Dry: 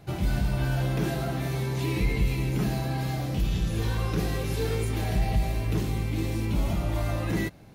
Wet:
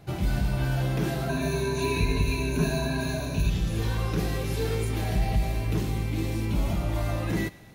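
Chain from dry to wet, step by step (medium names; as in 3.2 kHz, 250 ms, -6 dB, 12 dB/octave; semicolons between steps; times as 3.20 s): 1.29–3.50 s: rippled EQ curve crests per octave 1.5, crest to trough 17 dB; thinning echo 116 ms, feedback 73%, high-pass 880 Hz, level -19 dB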